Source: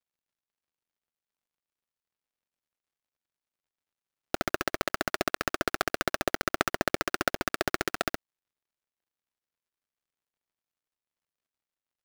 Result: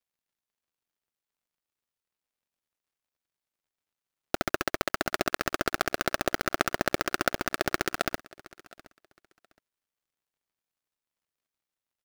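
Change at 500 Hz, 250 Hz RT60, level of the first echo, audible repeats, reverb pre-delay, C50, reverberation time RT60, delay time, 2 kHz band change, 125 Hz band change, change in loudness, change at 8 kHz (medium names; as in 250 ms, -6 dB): +1.0 dB, no reverb, -22.0 dB, 1, no reverb, no reverb, no reverb, 718 ms, +1.0 dB, +1.0 dB, +1.0 dB, +1.0 dB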